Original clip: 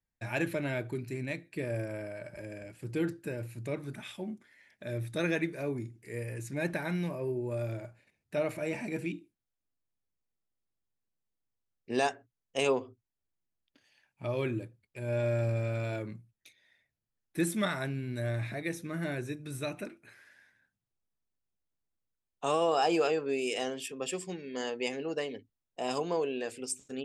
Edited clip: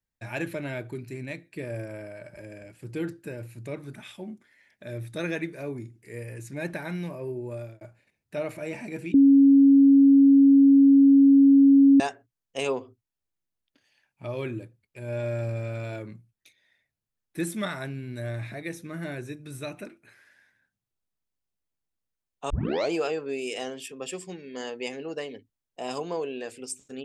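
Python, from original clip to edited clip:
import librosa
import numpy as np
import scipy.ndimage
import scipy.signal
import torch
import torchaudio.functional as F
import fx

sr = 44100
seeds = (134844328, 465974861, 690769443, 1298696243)

y = fx.edit(x, sr, fx.fade_out_span(start_s=7.42, length_s=0.39, curve='qsin'),
    fx.bleep(start_s=9.14, length_s=2.86, hz=276.0, db=-12.0),
    fx.tape_start(start_s=22.5, length_s=0.42), tone=tone)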